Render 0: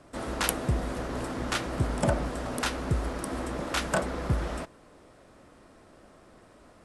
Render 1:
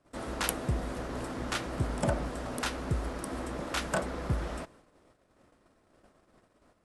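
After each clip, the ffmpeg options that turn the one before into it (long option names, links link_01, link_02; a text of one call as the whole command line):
ffmpeg -i in.wav -af "agate=range=-13dB:threshold=-53dB:ratio=16:detection=peak,volume=-3.5dB" out.wav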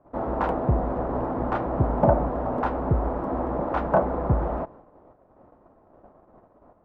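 ffmpeg -i in.wav -af "lowpass=frequency=860:width_type=q:width=2,volume=8dB" out.wav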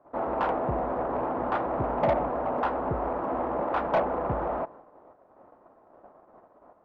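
ffmpeg -i in.wav -filter_complex "[0:a]asplit=2[link_01][link_02];[link_02]highpass=frequency=720:poles=1,volume=18dB,asoftclip=type=tanh:threshold=-6dB[link_03];[link_01][link_03]amix=inputs=2:normalize=0,lowpass=frequency=2300:poles=1,volume=-6dB,volume=-8.5dB" out.wav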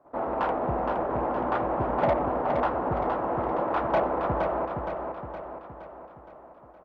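ffmpeg -i in.wav -af "aecho=1:1:467|934|1401|1868|2335|2802|3269:0.562|0.292|0.152|0.0791|0.0411|0.0214|0.0111" out.wav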